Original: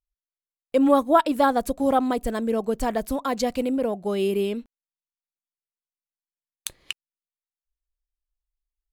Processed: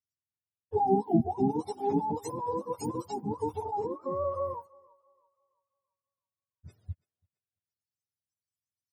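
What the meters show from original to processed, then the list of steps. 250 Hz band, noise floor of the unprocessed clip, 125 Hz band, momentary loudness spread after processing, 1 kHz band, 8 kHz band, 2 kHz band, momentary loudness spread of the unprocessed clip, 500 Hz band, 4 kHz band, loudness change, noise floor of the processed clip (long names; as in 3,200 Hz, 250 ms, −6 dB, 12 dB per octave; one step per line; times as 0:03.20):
−8.0 dB, below −85 dBFS, +3.0 dB, 17 LU, −6.5 dB, −11.5 dB, below −25 dB, 18 LU, −8.5 dB, −20.5 dB, −8.0 dB, below −85 dBFS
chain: frequency axis turned over on the octave scale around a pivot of 470 Hz
feedback echo with a high-pass in the loop 334 ms, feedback 41%, high-pass 490 Hz, level −23 dB
level −6.5 dB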